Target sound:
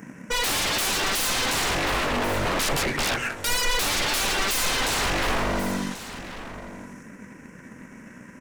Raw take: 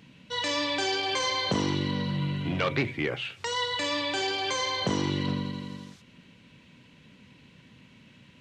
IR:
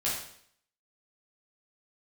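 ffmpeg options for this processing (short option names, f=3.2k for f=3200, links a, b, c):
-filter_complex "[0:a]firequalizer=gain_entry='entry(130,0);entry(200,9);entry(920,7);entry(1700,13);entry(3800,-30);entry(5500,7);entry(8900,12)':delay=0.05:min_phase=1,aeval=exprs='0.0376*(abs(mod(val(0)/0.0376+3,4)-2)-1)':c=same,aeval=exprs='0.0398*(cos(1*acos(clip(val(0)/0.0398,-1,1)))-cos(1*PI/2))+0.00251*(cos(7*acos(clip(val(0)/0.0398,-1,1)))-cos(7*PI/2))':c=same,asubboost=boost=3.5:cutoff=51,asplit=2[a][b];[b]aecho=0:1:1087:0.211[c];[a][c]amix=inputs=2:normalize=0,volume=8.5dB"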